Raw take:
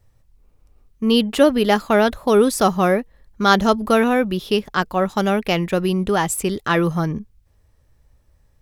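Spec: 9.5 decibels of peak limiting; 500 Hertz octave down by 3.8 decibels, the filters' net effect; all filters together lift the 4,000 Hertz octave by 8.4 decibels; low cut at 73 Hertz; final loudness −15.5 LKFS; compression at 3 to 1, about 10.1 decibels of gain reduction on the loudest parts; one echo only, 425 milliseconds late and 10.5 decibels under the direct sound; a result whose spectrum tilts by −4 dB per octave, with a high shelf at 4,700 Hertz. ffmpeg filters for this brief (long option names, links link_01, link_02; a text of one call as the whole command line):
ffmpeg -i in.wav -af "highpass=73,equalizer=frequency=500:width_type=o:gain=-5,equalizer=frequency=4000:width_type=o:gain=7.5,highshelf=frequency=4700:gain=8.5,acompressor=threshold=-22dB:ratio=3,alimiter=limit=-16.5dB:level=0:latency=1,aecho=1:1:425:0.299,volume=11dB" out.wav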